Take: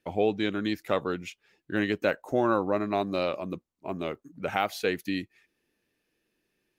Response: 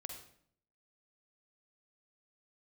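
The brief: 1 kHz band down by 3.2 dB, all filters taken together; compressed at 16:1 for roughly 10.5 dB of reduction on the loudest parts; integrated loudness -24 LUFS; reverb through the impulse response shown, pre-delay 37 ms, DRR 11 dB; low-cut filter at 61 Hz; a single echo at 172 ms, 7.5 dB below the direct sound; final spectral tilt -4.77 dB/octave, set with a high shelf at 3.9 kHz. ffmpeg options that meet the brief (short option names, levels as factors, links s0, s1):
-filter_complex "[0:a]highpass=61,equalizer=f=1000:t=o:g=-4,highshelf=f=3900:g=-7,acompressor=threshold=0.0282:ratio=16,aecho=1:1:172:0.422,asplit=2[s0][s1];[1:a]atrim=start_sample=2205,adelay=37[s2];[s1][s2]afir=irnorm=-1:irlink=0,volume=0.422[s3];[s0][s3]amix=inputs=2:normalize=0,volume=4.47"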